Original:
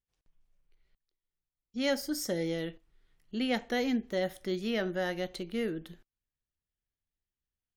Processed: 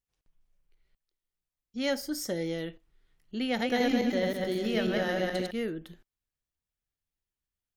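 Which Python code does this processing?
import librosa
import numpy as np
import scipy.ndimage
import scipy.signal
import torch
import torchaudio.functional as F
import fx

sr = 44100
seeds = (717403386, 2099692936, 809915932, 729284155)

y = fx.reverse_delay_fb(x, sr, ms=107, feedback_pct=58, wet_db=-0.5, at=(3.48, 5.51))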